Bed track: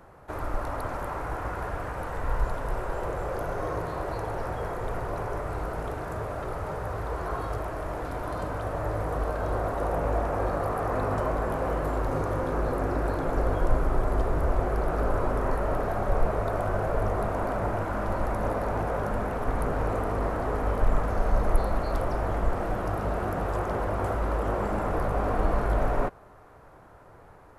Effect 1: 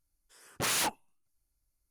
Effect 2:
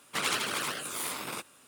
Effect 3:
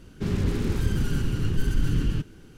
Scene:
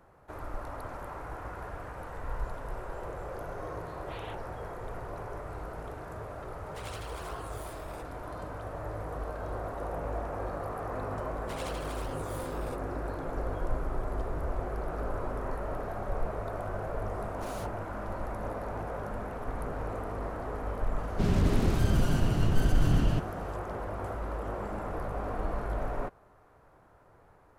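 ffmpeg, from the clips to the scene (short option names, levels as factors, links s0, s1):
-filter_complex "[1:a]asplit=2[s0][s1];[2:a]asplit=2[s2][s3];[0:a]volume=0.398[s4];[s0]aresample=8000,aresample=44100[s5];[s1]acompressor=threshold=0.0126:ratio=6:attack=3.2:release=140:knee=1:detection=peak[s6];[s5]atrim=end=1.9,asetpts=PTS-STARTPTS,volume=0.178,afade=t=in:d=0.004:c=hsin,afade=t=out:st=1.896:d=0.004:c=hsin,adelay=3470[s7];[s2]atrim=end=1.67,asetpts=PTS-STARTPTS,volume=0.15,afade=t=in:d=0.004:c=hsin,afade=t=out:st=1.666:d=0.004:c=hsin,adelay=6610[s8];[s3]atrim=end=1.67,asetpts=PTS-STARTPTS,volume=0.188,afade=t=in:d=0.004:c=hsin,afade=t=out:st=1.666:d=0.004:c=hsin,adelay=11340[s9];[s6]atrim=end=1.9,asetpts=PTS-STARTPTS,volume=0.299,afade=t=in:d=0.004:c=hsin,afade=t=out:st=1.896:d=0.004:c=hsin,adelay=16790[s10];[3:a]atrim=end=2.57,asetpts=PTS-STARTPTS,volume=0.891,afade=t=in:d=0.004:c=hsin,afade=t=out:st=2.566:d=0.004:c=hsin,adelay=20980[s11];[s4][s7][s8][s9][s10][s11]amix=inputs=6:normalize=0"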